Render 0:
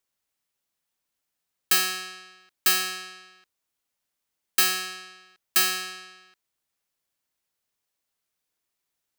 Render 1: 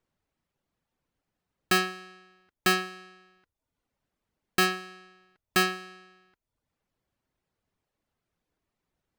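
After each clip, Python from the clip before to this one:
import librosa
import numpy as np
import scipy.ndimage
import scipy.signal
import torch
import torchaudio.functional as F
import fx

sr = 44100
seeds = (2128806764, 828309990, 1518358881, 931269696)

y = fx.dereverb_blind(x, sr, rt60_s=0.55)
y = fx.lowpass(y, sr, hz=1100.0, slope=6)
y = fx.low_shelf(y, sr, hz=290.0, db=10.0)
y = y * librosa.db_to_amplitude(7.5)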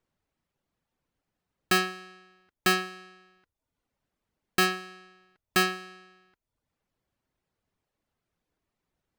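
y = x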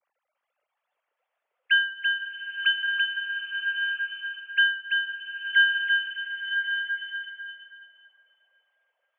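y = fx.sine_speech(x, sr)
y = y + 10.0 ** (-4.5 / 20.0) * np.pad(y, (int(336 * sr / 1000.0), 0))[:len(y)]
y = fx.rev_bloom(y, sr, seeds[0], attack_ms=1190, drr_db=3.0)
y = y * librosa.db_to_amplitude(3.0)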